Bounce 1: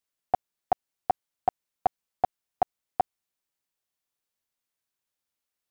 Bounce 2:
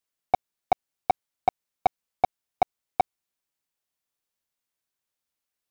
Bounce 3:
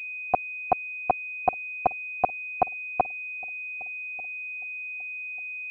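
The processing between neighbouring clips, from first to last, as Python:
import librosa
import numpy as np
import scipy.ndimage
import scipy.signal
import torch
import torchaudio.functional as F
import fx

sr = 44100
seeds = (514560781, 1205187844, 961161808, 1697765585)

y1 = fx.leveller(x, sr, passes=1)
y1 = y1 * librosa.db_to_amplitude(2.0)
y2 = fx.echo_feedback(y1, sr, ms=1192, feedback_pct=25, wet_db=-24.0)
y2 = fx.pwm(y2, sr, carrier_hz=2500.0)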